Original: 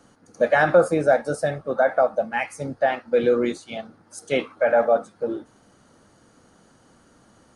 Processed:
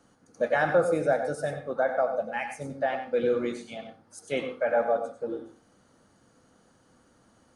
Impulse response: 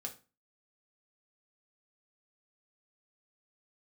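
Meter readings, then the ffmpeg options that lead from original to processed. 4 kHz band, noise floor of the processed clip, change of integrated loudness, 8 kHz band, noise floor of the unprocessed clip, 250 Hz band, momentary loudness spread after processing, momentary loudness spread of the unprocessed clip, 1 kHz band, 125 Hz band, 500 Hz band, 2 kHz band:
-6.5 dB, -63 dBFS, -6.5 dB, -6.5 dB, -57 dBFS, -6.5 dB, 14 LU, 13 LU, -6.0 dB, -6.0 dB, -6.0 dB, -6.5 dB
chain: -filter_complex "[0:a]asplit=2[a][b];[1:a]atrim=start_sample=2205,adelay=93[c];[b][c]afir=irnorm=-1:irlink=0,volume=-5.5dB[d];[a][d]amix=inputs=2:normalize=0,volume=-7dB"

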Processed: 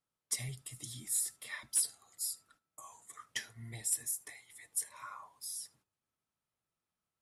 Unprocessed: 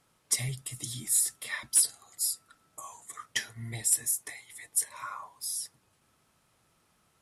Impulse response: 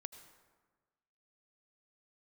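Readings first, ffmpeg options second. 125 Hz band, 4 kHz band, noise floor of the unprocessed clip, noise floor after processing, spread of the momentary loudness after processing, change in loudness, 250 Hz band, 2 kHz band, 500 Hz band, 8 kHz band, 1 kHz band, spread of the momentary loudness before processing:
-8.0 dB, -8.0 dB, -70 dBFS, under -85 dBFS, 18 LU, -7.5 dB, -8.0 dB, -8.0 dB, -8.0 dB, -8.0 dB, -7.5 dB, 19 LU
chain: -filter_complex "[0:a]agate=range=-15dB:threshold=-58dB:ratio=16:detection=peak[a];[1:a]atrim=start_sample=2205,atrim=end_sample=3528[b];[a][b]afir=irnorm=-1:irlink=0,volume=-3dB"

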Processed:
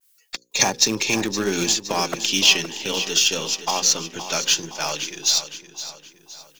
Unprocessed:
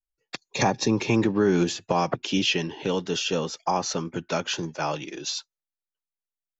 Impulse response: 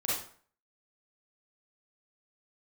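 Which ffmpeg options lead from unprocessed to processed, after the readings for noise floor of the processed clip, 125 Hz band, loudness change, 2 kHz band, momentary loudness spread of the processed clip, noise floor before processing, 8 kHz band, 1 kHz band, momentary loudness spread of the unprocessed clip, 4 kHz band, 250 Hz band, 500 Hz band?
-60 dBFS, -6.0 dB, +6.0 dB, +6.5 dB, 16 LU, under -85 dBFS, n/a, 0.0 dB, 9 LU, +10.5 dB, -3.5 dB, -2.0 dB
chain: -filter_complex "[0:a]equalizer=f=90:t=o:w=1.9:g=-6,bandreject=f=60:t=h:w=6,bandreject=f=120:t=h:w=6,bandreject=f=180:t=h:w=6,bandreject=f=240:t=h:w=6,bandreject=f=300:t=h:w=6,bandreject=f=360:t=h:w=6,bandreject=f=420:t=h:w=6,bandreject=f=480:t=h:w=6,bandreject=f=540:t=h:w=6,acrossover=split=1200[a][b];[b]acompressor=mode=upward:threshold=-49dB:ratio=2.5[c];[a][c]amix=inputs=2:normalize=0,crystalizer=i=3:c=0,asplit=2[d][e];[e]acrusher=bits=4:dc=4:mix=0:aa=0.000001,volume=-11dB[f];[d][f]amix=inputs=2:normalize=0,aecho=1:1:517|1034|1551|2068|2585:0.266|0.128|0.0613|0.0294|0.0141,adynamicequalizer=threshold=0.02:dfrequency=1800:dqfactor=0.7:tfrequency=1800:tqfactor=0.7:attack=5:release=100:ratio=0.375:range=3:mode=boostabove:tftype=highshelf,volume=-3.5dB"

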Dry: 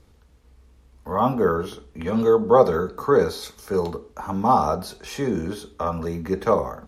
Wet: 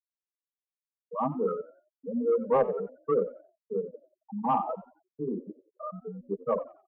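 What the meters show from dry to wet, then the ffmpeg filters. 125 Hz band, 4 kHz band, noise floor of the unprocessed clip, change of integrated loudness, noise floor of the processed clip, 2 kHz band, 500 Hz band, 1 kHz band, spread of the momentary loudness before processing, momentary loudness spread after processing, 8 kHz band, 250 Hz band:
-14.5 dB, under -25 dB, -55 dBFS, -8.5 dB, under -85 dBFS, -18.0 dB, -8.5 dB, -9.5 dB, 15 LU, 16 LU, under -35 dB, -9.5 dB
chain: -filter_complex "[0:a]afftfilt=real='re*gte(hypot(re,im),0.316)':imag='im*gte(hypot(re,im),0.316)':win_size=1024:overlap=0.75,asoftclip=type=tanh:threshold=-6dB,afreqshift=15,asplit=4[a][b][c][d];[b]adelay=90,afreqshift=59,volume=-18dB[e];[c]adelay=180,afreqshift=118,volume=-28.2dB[f];[d]adelay=270,afreqshift=177,volume=-38.3dB[g];[a][e][f][g]amix=inputs=4:normalize=0,volume=-7.5dB"

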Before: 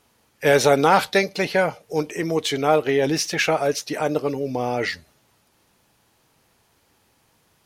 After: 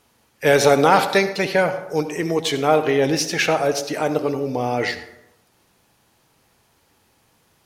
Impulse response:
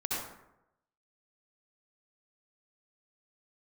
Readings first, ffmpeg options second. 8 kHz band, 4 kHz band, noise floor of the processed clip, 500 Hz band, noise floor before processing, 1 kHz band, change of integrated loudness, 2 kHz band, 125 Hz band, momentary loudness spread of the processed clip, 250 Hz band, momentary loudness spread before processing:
+1.5 dB, +1.5 dB, -62 dBFS, +2.0 dB, -64 dBFS, +2.0 dB, +2.0 dB, +1.5 dB, +2.0 dB, 9 LU, +2.0 dB, 9 LU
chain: -filter_complex "[0:a]asplit=2[a][b];[1:a]atrim=start_sample=2205[c];[b][c]afir=irnorm=-1:irlink=0,volume=-14dB[d];[a][d]amix=inputs=2:normalize=0"

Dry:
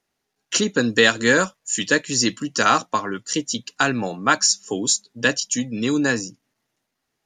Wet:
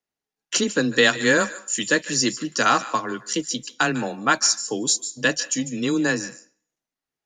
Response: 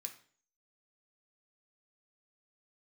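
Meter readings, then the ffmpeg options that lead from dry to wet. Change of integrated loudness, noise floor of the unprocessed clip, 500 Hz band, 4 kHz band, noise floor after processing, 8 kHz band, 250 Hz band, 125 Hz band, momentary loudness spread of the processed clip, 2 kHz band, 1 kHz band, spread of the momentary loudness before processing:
-1.5 dB, -78 dBFS, -1.5 dB, -1.5 dB, under -85 dBFS, -1.0 dB, -1.5 dB, -2.5 dB, 9 LU, -1.5 dB, -1.5 dB, 9 LU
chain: -filter_complex "[0:a]afreqshift=15,agate=range=-11dB:threshold=-39dB:ratio=16:detection=peak,asplit=2[a][b];[b]highpass=430[c];[1:a]atrim=start_sample=2205,adelay=148[d];[c][d]afir=irnorm=-1:irlink=0,volume=-10.5dB[e];[a][e]amix=inputs=2:normalize=0,volume=-1.5dB"

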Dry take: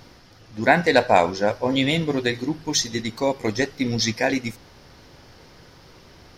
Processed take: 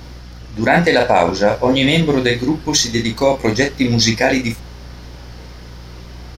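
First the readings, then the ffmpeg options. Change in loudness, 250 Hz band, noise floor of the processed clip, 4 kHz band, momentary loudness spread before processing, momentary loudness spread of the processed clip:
+6.5 dB, +7.5 dB, -35 dBFS, +7.5 dB, 10 LU, 6 LU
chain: -filter_complex "[0:a]aeval=exprs='val(0)+0.00631*(sin(2*PI*60*n/s)+sin(2*PI*2*60*n/s)/2+sin(2*PI*3*60*n/s)/3+sin(2*PI*4*60*n/s)/4+sin(2*PI*5*60*n/s)/5)':c=same,asplit=2[a][b];[b]adelay=35,volume=-6dB[c];[a][c]amix=inputs=2:normalize=0,alimiter=level_in=8.5dB:limit=-1dB:release=50:level=0:latency=1,volume=-1dB"

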